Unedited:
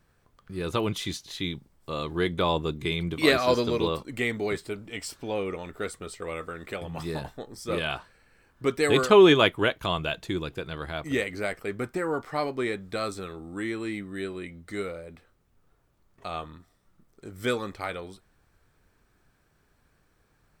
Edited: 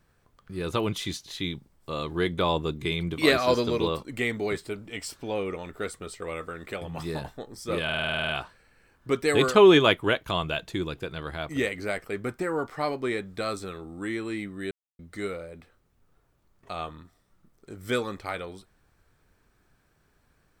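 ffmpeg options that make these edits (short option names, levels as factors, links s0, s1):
-filter_complex "[0:a]asplit=12[s0][s1][s2][s3][s4][s5][s6][s7][s8][s9][s10][s11];[s0]atrim=end=7.892[s12];[s1]atrim=start=7.838:end=7.892[s13];[s2]atrim=start=7.838:end=7.892[s14];[s3]atrim=start=7.838:end=7.892[s15];[s4]atrim=start=7.838:end=7.892[s16];[s5]atrim=start=7.838:end=7.892[s17];[s6]atrim=start=7.838:end=7.892[s18];[s7]atrim=start=7.838:end=7.892[s19];[s8]atrim=start=7.838:end=7.892[s20];[s9]atrim=start=7.838:end=14.26,asetpts=PTS-STARTPTS,afade=t=out:st=6.418:d=0.004:c=hsin[s21];[s10]atrim=start=14.26:end=14.54,asetpts=PTS-STARTPTS,volume=0[s22];[s11]atrim=start=14.54,asetpts=PTS-STARTPTS,afade=t=in:d=0.004:c=hsin[s23];[s12][s13]acrossfade=d=0.004:c1=hsin:c2=hsin[s24];[s24][s14]acrossfade=d=0.004:c1=hsin:c2=hsin[s25];[s25][s15]acrossfade=d=0.004:c1=hsin:c2=hsin[s26];[s26][s16]acrossfade=d=0.004:c1=hsin:c2=hsin[s27];[s27][s17]acrossfade=d=0.004:c1=hsin:c2=hsin[s28];[s28][s18]acrossfade=d=0.004:c1=hsin:c2=hsin[s29];[s29][s19]acrossfade=d=0.004:c1=hsin:c2=hsin[s30];[s30][s20]acrossfade=d=0.004:c1=hsin:c2=hsin[s31];[s21][s22][s23]concat=n=3:v=0:a=1[s32];[s31][s32]acrossfade=d=0.004:c1=hsin:c2=hsin"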